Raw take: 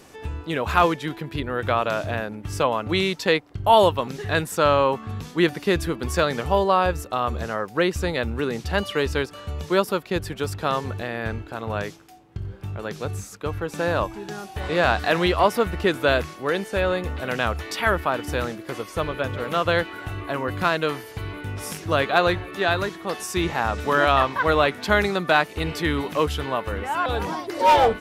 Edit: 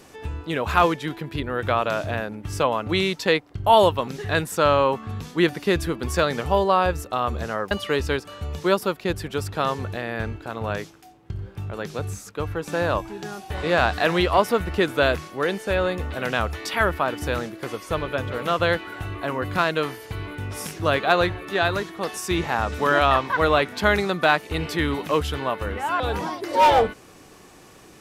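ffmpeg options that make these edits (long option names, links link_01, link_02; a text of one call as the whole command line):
ffmpeg -i in.wav -filter_complex "[0:a]asplit=2[link_01][link_02];[link_01]atrim=end=7.712[link_03];[link_02]atrim=start=8.768[link_04];[link_03][link_04]acrossfade=duration=0.004:curve1=hsin:curve2=hsin" out.wav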